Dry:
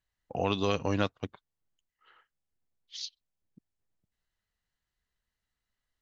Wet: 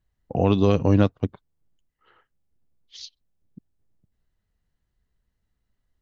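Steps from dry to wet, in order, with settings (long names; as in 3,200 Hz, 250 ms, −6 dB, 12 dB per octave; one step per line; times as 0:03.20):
tilt shelving filter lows +8 dB, about 650 Hz
level +6.5 dB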